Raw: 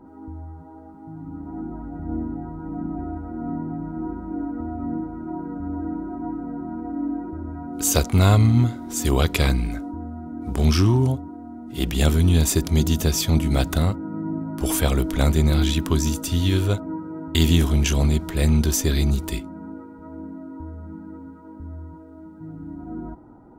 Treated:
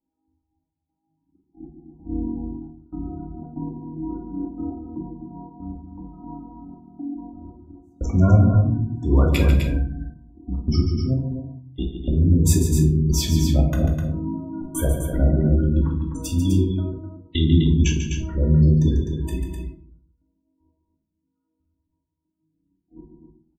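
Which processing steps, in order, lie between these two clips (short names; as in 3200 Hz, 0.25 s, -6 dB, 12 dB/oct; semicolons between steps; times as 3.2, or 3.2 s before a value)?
gate -29 dBFS, range -37 dB; spectral gate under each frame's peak -20 dB strong; 4.99–7.45 bell 340 Hz -12 dB 0.48 oct; step gate "xxx.x..x" 118 bpm -60 dB; loudspeakers at several distances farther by 49 m -9 dB, 87 m -7 dB; shoebox room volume 500 m³, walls furnished, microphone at 2.4 m; gain -3.5 dB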